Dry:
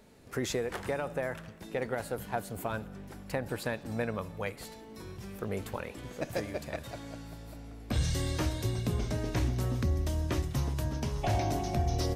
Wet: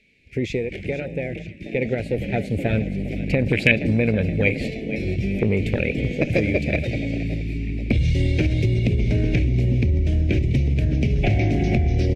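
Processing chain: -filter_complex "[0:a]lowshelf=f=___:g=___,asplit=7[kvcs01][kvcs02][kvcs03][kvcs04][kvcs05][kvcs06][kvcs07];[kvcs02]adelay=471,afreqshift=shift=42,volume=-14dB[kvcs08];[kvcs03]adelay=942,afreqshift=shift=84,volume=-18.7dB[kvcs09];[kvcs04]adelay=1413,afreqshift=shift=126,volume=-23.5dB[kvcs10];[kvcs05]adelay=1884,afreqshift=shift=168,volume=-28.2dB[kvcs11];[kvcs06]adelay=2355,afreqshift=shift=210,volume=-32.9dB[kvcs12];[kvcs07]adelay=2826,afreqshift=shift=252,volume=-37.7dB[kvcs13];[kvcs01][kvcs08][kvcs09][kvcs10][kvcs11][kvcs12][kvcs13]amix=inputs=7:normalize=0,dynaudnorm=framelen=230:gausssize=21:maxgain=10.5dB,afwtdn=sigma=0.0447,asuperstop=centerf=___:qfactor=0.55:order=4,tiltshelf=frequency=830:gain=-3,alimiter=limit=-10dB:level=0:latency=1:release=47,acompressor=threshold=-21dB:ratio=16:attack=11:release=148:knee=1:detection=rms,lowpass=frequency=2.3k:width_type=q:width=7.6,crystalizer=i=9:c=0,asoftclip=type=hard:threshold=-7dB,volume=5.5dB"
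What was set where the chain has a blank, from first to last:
380, 9, 1100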